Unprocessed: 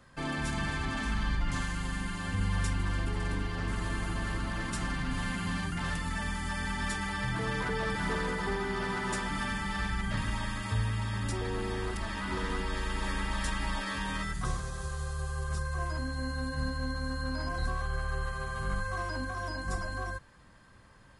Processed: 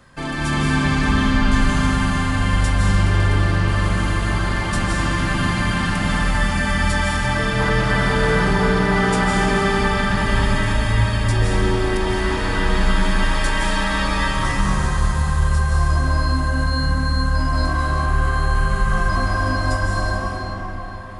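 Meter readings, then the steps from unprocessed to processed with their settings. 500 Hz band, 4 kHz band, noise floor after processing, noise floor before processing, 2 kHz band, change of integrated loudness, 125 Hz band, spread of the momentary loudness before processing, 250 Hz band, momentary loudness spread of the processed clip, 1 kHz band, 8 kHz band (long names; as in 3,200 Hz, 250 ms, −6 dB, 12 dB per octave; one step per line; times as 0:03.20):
+14.5 dB, +13.5 dB, −26 dBFS, −56 dBFS, +13.5 dB, +14.5 dB, +15.0 dB, 4 LU, +14.5 dB, 4 LU, +14.5 dB, +11.5 dB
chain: comb and all-pass reverb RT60 4.7 s, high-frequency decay 0.6×, pre-delay 120 ms, DRR −5.5 dB
level +8 dB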